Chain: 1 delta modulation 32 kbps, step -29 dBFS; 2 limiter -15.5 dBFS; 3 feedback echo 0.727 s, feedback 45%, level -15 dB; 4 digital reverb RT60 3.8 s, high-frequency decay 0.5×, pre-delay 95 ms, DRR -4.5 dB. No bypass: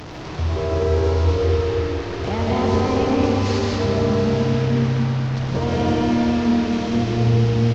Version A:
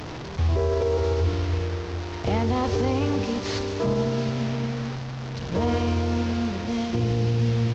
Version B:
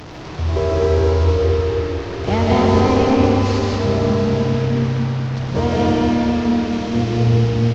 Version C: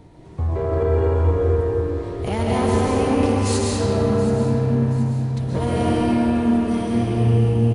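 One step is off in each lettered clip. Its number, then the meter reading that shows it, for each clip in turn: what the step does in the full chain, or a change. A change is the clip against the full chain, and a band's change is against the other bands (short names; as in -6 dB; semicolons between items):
4, momentary loudness spread change +2 LU; 2, crest factor change +2.0 dB; 1, 4 kHz band -3.5 dB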